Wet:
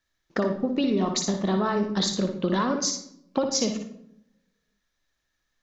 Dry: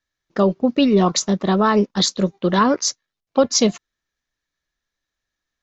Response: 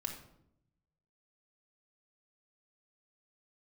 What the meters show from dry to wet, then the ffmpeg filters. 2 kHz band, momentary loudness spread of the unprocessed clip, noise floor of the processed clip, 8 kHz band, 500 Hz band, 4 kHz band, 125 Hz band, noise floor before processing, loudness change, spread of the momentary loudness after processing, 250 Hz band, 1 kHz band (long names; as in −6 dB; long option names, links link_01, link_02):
−7.0 dB, 6 LU, −78 dBFS, can't be measured, −8.0 dB, −6.5 dB, −7.5 dB, −84 dBFS, −8.0 dB, 8 LU, −7.0 dB, −9.0 dB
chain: -filter_complex "[0:a]acompressor=threshold=-26dB:ratio=6,asplit=2[link_01][link_02];[1:a]atrim=start_sample=2205,adelay=58[link_03];[link_02][link_03]afir=irnorm=-1:irlink=0,volume=-4.5dB[link_04];[link_01][link_04]amix=inputs=2:normalize=0,volume=2.5dB"